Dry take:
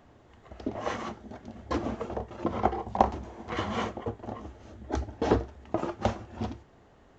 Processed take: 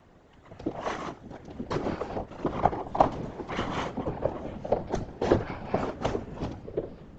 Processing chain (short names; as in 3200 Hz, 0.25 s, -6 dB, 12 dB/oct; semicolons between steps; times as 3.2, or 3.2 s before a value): whisperiser; echoes that change speed 0.71 s, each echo -5 st, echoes 3, each echo -6 dB